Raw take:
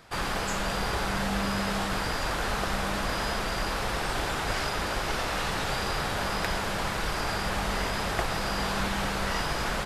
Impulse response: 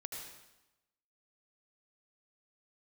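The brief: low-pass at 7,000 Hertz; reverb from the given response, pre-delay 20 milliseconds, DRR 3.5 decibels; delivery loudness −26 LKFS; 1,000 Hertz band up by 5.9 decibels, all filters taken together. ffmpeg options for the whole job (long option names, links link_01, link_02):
-filter_complex "[0:a]lowpass=7000,equalizer=frequency=1000:width_type=o:gain=7.5,asplit=2[link_01][link_02];[1:a]atrim=start_sample=2205,adelay=20[link_03];[link_02][link_03]afir=irnorm=-1:irlink=0,volume=-2dB[link_04];[link_01][link_04]amix=inputs=2:normalize=0,volume=-1dB"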